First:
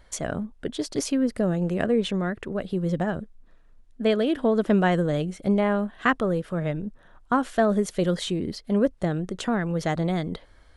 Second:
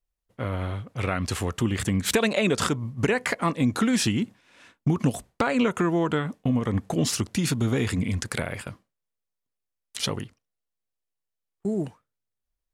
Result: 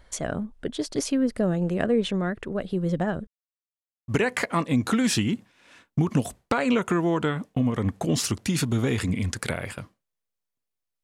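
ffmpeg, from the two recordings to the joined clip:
-filter_complex "[0:a]apad=whole_dur=11.03,atrim=end=11.03,asplit=2[s0][s1];[s0]atrim=end=3.27,asetpts=PTS-STARTPTS,afade=t=out:st=3.266:d=0.004:c=hsin[s2];[s1]atrim=start=3.27:end=4.08,asetpts=PTS-STARTPTS,volume=0[s3];[1:a]atrim=start=2.97:end=9.92,asetpts=PTS-STARTPTS,afade=t=in:d=0.004:c=hsin[s4];[s2][s3][s4]concat=n=3:v=0:a=1"

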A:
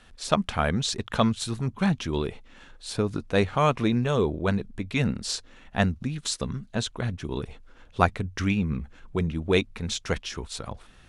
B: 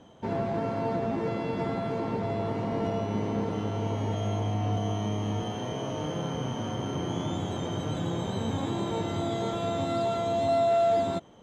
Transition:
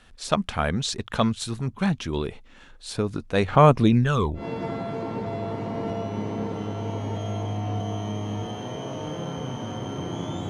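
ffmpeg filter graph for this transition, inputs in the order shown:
-filter_complex "[0:a]asettb=1/sr,asplit=3[s0][s1][s2];[s0]atrim=end=3.484[s3];[s1]atrim=start=3.48:end=4.46,asetpts=PTS-STARTPTS,afade=t=in:d=0.004:c=qsin,afade=t=out:st=0.976:d=0.004:c=qsin,aphaser=in_gain=1:out_gain=1:delay=2.2:decay=0.65:speed=0.3:type=sinusoidal[s4];[s2]atrim=start=4.456[s5];[s3][s4]acrossfade=d=0.004:c1=hsin:c2=qsin[s6];[s6][s5]acrossfade=d=0.004:c1=qsin:c2=hsin,apad=whole_dur=10.49,atrim=end=10.49,atrim=end=4.46,asetpts=PTS-STARTPTS[s7];[1:a]atrim=start=1.31:end=7.46,asetpts=PTS-STARTPTS[s8];[s7][s8]acrossfade=d=0.12:c1=tri:c2=tri"

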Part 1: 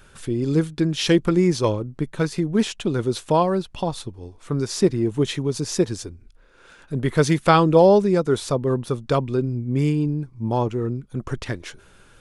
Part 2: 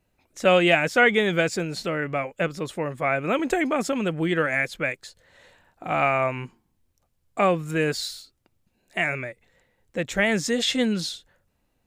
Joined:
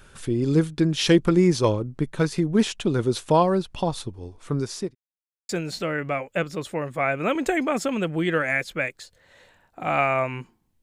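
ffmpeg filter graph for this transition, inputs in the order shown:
-filter_complex "[0:a]apad=whole_dur=10.82,atrim=end=10.82,asplit=2[s0][s1];[s0]atrim=end=4.95,asetpts=PTS-STARTPTS,afade=t=out:st=4.31:d=0.64:c=qsin[s2];[s1]atrim=start=4.95:end=5.49,asetpts=PTS-STARTPTS,volume=0[s3];[1:a]atrim=start=1.53:end=6.86,asetpts=PTS-STARTPTS,afade=t=in:d=0.004:c=hsin[s4];[s2][s3][s4]concat=n=3:v=0:a=1"

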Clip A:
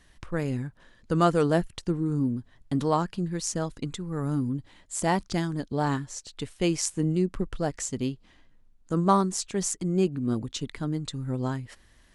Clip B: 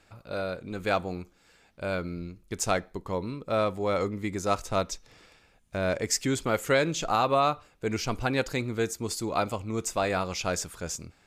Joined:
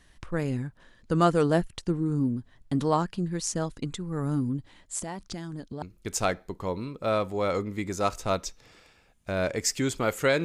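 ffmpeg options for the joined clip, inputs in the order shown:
-filter_complex "[0:a]asettb=1/sr,asplit=3[s0][s1][s2];[s0]atrim=end=4.994[s3];[s1]atrim=start=4.99:end=5.82,asetpts=PTS-STARTPTS,afade=t=in:d=0.004:c=qsin,afade=t=out:st=0.826:d=0.004:c=qsin,acompressor=threshold=0.0224:ratio=5:attack=3.2:release=140:knee=1:detection=peak[s4];[s2]atrim=start=5.816[s5];[s3][s4]acrossfade=d=0.004:c1=hsin:c2=qsin[s6];[s6][s5]acrossfade=d=0.004:c1=qsin:c2=hsin,apad=whole_dur=10.44,atrim=end=10.44,atrim=end=5.822[s7];[1:a]atrim=start=2.278:end=6.9[s8];[s7][s8]acrossfade=d=0.004:c1=hsin:c2=hsin"

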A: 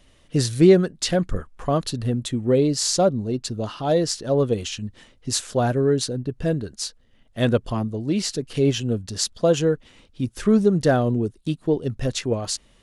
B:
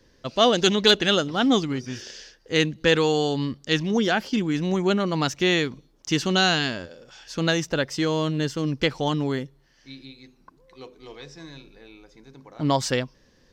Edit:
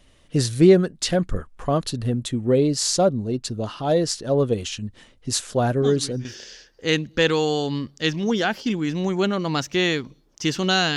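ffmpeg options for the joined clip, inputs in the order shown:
-filter_complex "[1:a]asplit=2[s0][s1];[0:a]apad=whole_dur=10.96,atrim=end=10.96,atrim=end=6.252[s2];[s1]atrim=start=1.918:end=6.63[s3];[s0]atrim=start=1.49:end=1.92,asetpts=PTS-STARTPTS,volume=0.282,afade=t=in:d=0.004:c=hsin,afade=t=out:st=0.426:d=0.004:c=hsin,adelay=5820[s4];[s2][s3]acrossfade=d=0.004:c1=hsin:c2=hsin[s5];[s5][s4]amix=inputs=2:normalize=0"

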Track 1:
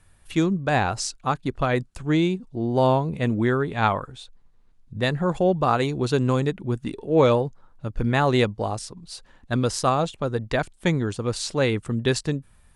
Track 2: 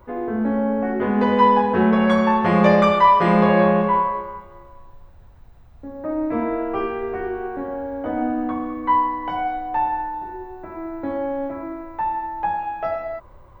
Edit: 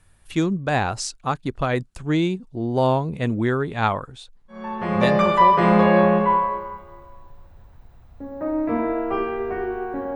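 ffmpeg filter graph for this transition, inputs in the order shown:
-filter_complex "[0:a]apad=whole_dur=10.15,atrim=end=10.15,atrim=end=5.9,asetpts=PTS-STARTPTS[s0];[1:a]atrim=start=2.11:end=7.78,asetpts=PTS-STARTPTS[s1];[s0][s1]acrossfade=d=1.42:c1=qsin:c2=qsin"

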